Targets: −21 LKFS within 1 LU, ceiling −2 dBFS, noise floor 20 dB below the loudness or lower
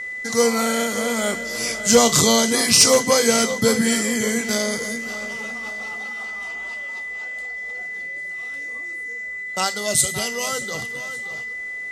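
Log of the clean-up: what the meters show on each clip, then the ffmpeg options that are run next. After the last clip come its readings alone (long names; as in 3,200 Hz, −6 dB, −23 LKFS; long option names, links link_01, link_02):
interfering tone 2,000 Hz; level of the tone −28 dBFS; integrated loudness −20.5 LKFS; sample peak −4.5 dBFS; target loudness −21.0 LKFS
→ -af "bandreject=frequency=2000:width=30"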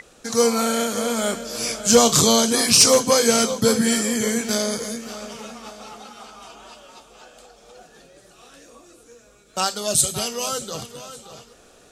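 interfering tone none found; integrated loudness −18.5 LKFS; sample peak −5.0 dBFS; target loudness −21.0 LKFS
→ -af "volume=-2.5dB"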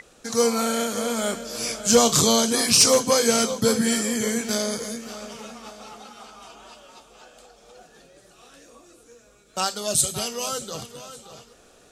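integrated loudness −21.0 LKFS; sample peak −7.5 dBFS; background noise floor −54 dBFS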